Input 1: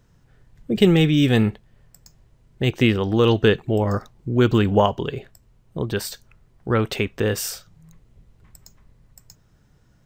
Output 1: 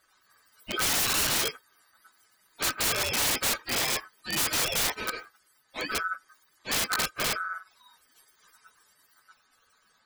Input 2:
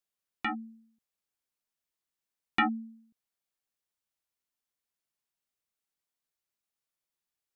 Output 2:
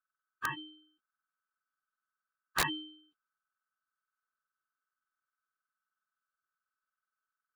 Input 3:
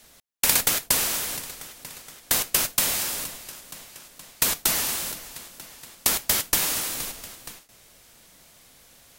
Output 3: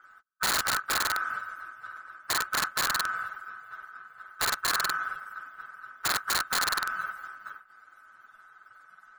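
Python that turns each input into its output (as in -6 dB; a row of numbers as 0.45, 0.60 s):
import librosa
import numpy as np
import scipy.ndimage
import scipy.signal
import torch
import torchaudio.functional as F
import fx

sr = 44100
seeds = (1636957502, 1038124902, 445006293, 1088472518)

y = fx.octave_mirror(x, sr, pivot_hz=620.0)
y = y * np.sin(2.0 * np.pi * 1400.0 * np.arange(len(y)) / sr)
y = (np.mod(10.0 ** (20.0 / 20.0) * y + 1.0, 2.0) - 1.0) / 10.0 ** (20.0 / 20.0)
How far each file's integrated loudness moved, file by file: -6.5, -3.0, -5.5 LU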